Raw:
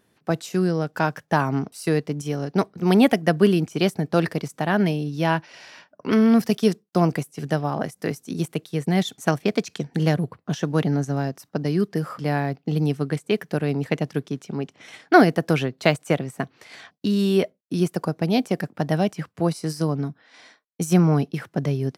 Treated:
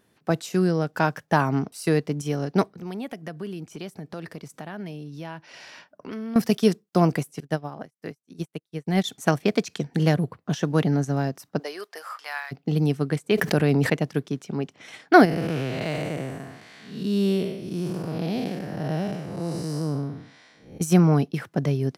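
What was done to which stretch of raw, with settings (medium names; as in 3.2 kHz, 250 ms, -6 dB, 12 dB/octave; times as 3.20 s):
2.71–6.36 s: compression 2.5:1, threshold -39 dBFS
7.40–9.04 s: upward expansion 2.5:1, over -42 dBFS
11.58–12.51 s: high-pass 440 Hz -> 1.2 kHz 24 dB/octave
13.31–13.90 s: level flattener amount 70%
15.25–20.81 s: spectral blur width 272 ms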